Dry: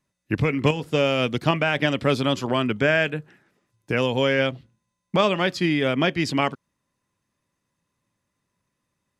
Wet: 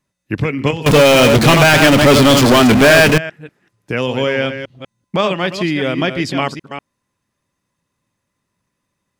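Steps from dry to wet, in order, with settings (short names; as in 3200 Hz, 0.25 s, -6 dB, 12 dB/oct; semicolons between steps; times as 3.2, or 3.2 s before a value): reverse delay 0.194 s, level -8.5 dB; 0.86–3.18 power-law curve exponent 0.35; gain +3.5 dB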